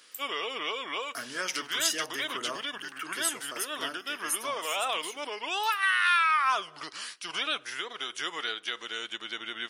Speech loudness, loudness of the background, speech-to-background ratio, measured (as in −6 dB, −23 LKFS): −34.5 LKFS, −31.0 LKFS, −3.5 dB